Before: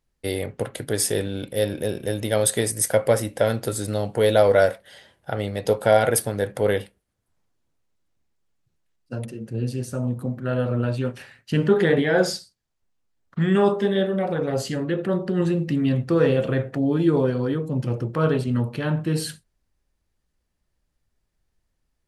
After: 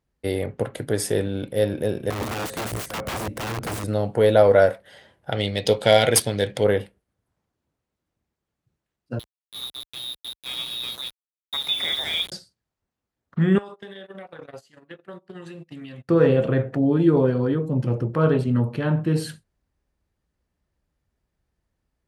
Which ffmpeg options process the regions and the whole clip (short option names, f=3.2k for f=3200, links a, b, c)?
-filter_complex "[0:a]asettb=1/sr,asplit=3[a][b][c];[a]atrim=end=2.104[d];[b]atrim=start=2.1:end=3.84,asetpts=PTS-STARTPTS,afade=t=in:d=0.004:c=qsin,afade=t=out:st=1.736:d=0.004:c=qsin,lowshelf=f=350:g=10,acompressor=threshold=-22dB:ratio=2.5:attack=3.2:release=140:knee=1:detection=peak,aeval=exprs='(mod(14.1*val(0)+1,2)-1)/14.1':c=same[e];[c]atrim=start=3.836[f];[d][e]acrossfade=d=0.004:c1=hsin:c2=qsin[g];[g][f]acrossfade=d=0.004:c1=qsin:c2=hsin,asettb=1/sr,asplit=3[h][i][j];[h]atrim=end=5.324[k];[i]atrim=start=5.32:end=6.64,asetpts=PTS-STARTPTS,afade=t=in:d=0.004:c=qsin,afade=t=out:st=1.316:d=0.004:c=qsin,highshelf=f=2k:t=q:w=1.5:g=14,bandreject=f=2.7k:w=15,adynamicsmooth=sensitivity=1:basefreq=5.5k[l];[j]atrim=start=6.636[m];[k][l]acrossfade=d=0.004:c1=hsin:c2=qsin[n];[n][m]acrossfade=d=0.004:c1=qsin:c2=hsin,asettb=1/sr,asplit=3[o][p][q];[o]atrim=end=9.194[r];[p]atrim=start=9.19:end=12.32,asetpts=PTS-STARTPTS,afade=t=in:d=0.004:c=qsin,afade=t=out:st=3.126:d=0.004:c=qsin,lowpass=f=3.3k:t=q:w=0.5098,lowpass=f=3.3k:t=q:w=0.6013,lowpass=f=3.3k:t=q:w=0.9,lowpass=f=3.3k:t=q:w=2.563,afreqshift=-3900,aeval=exprs='val(0)*gte(abs(val(0)),0.0596)':c=same,tiltshelf=f=740:g=4.5[s];[q]atrim=start=12.316[t];[r][s]acrossfade=d=0.004:c1=hsin:c2=qsin[u];[u][t]acrossfade=d=0.004:c1=qsin:c2=hsin,asettb=1/sr,asplit=3[v][w][x];[v]atrim=end=13.584[y];[w]atrim=start=13.58:end=16.09,asetpts=PTS-STARTPTS,afade=t=in:d=0.004:c=qsin,afade=t=out:st=2.506:d=0.004:c=qsin,agate=range=-30dB:threshold=-23dB:ratio=16:release=100:detection=peak,tiltshelf=f=860:g=-9.5,acompressor=threshold=-36dB:ratio=12:attack=3.2:release=140:knee=1:detection=peak[z];[x]atrim=start=16.086[aa];[y][z]acrossfade=d=0.004:c1=hsin:c2=qsin[ab];[ab][aa]acrossfade=d=0.004:c1=qsin:c2=hsin,highpass=42,highshelf=f=2.6k:g=-8.5,volume=2dB"